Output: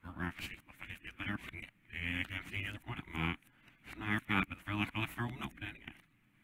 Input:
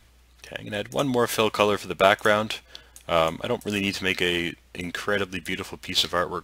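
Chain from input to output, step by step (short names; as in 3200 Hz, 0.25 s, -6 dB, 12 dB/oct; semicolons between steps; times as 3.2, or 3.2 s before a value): whole clip reversed; spectral gate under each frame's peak -10 dB weak; EQ curve 290 Hz 0 dB, 450 Hz -19 dB, 2300 Hz -3 dB, 5000 Hz -28 dB, 11000 Hz -15 dB; gain -2.5 dB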